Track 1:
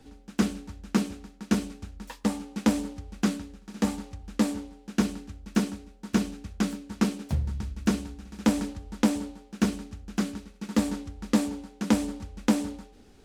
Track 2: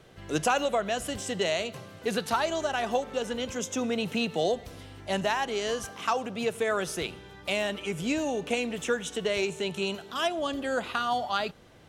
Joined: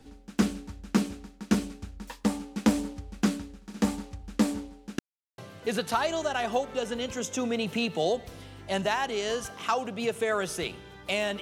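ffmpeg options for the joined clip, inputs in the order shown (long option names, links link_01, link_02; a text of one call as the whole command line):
ffmpeg -i cue0.wav -i cue1.wav -filter_complex "[0:a]apad=whole_dur=11.41,atrim=end=11.41,asplit=2[link_01][link_02];[link_01]atrim=end=4.99,asetpts=PTS-STARTPTS,afade=type=out:start_time=4.986:duration=0.004:curve=hsin[link_03];[link_02]atrim=start=4.99:end=5.38,asetpts=PTS-STARTPTS,volume=0[link_04];[1:a]atrim=start=1.77:end=7.8,asetpts=PTS-STARTPTS,afade=type=in:duration=0.004:curve=hsin[link_05];[link_03][link_04][link_05]concat=n=3:v=0:a=1" out.wav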